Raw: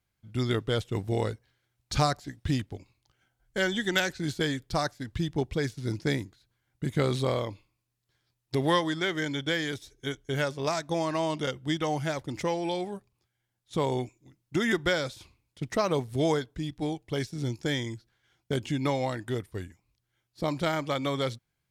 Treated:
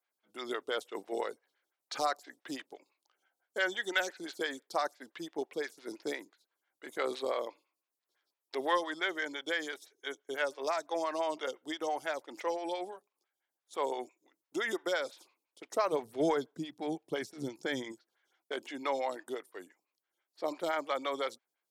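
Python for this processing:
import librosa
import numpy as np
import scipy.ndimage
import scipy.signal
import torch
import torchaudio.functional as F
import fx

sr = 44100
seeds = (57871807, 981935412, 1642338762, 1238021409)

y = fx.bessel_highpass(x, sr, hz=fx.steps((0.0, 500.0), (15.92, 250.0), (17.91, 460.0)), order=4)
y = 10.0 ** (-14.5 / 20.0) * np.tanh(y / 10.0 ** (-14.5 / 20.0))
y = fx.stagger_phaser(y, sr, hz=5.9)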